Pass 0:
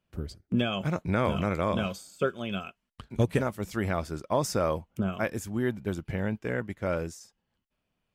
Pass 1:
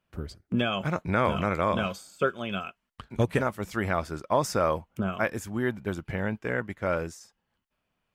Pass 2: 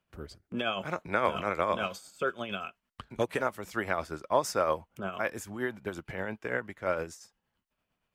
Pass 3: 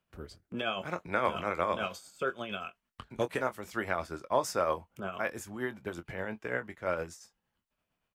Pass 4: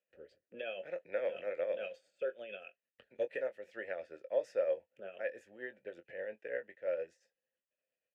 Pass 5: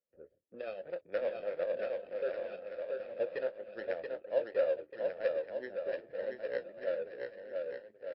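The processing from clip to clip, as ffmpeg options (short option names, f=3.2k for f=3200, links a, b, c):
-af "equalizer=f=1.3k:t=o:w=2.2:g=6,volume=-1dB"
-filter_complex "[0:a]acrossover=split=300[a][b];[a]acompressor=threshold=-42dB:ratio=4[c];[c][b]amix=inputs=2:normalize=0,tremolo=f=8.7:d=0.49"
-filter_complex "[0:a]asplit=2[a][b];[b]adelay=23,volume=-11.5dB[c];[a][c]amix=inputs=2:normalize=0,volume=-2dB"
-filter_complex "[0:a]asplit=3[a][b][c];[a]bandpass=f=530:t=q:w=8,volume=0dB[d];[b]bandpass=f=1.84k:t=q:w=8,volume=-6dB[e];[c]bandpass=f=2.48k:t=q:w=8,volume=-9dB[f];[d][e][f]amix=inputs=3:normalize=0,volume=2.5dB"
-af "adynamicsmooth=sensitivity=5.5:basefreq=640,aecho=1:1:680|1190|1572|1859|2075:0.631|0.398|0.251|0.158|0.1,volume=2dB" -ar 12000 -c:a libmp3lame -b:a 32k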